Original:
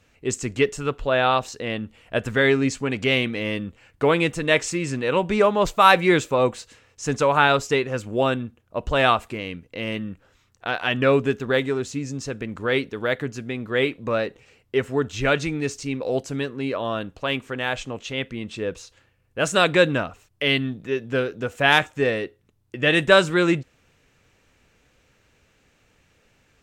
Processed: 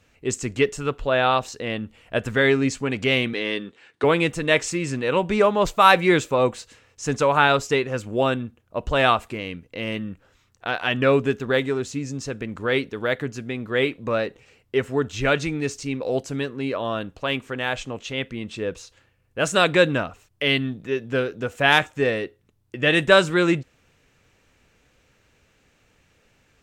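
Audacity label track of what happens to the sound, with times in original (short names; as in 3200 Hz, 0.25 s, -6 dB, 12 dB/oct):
3.330000	4.040000	speaker cabinet 260–9600 Hz, peaks and dips at 400 Hz +7 dB, 570 Hz -5 dB, 1700 Hz +5 dB, 3700 Hz +9 dB, 7100 Hz -3 dB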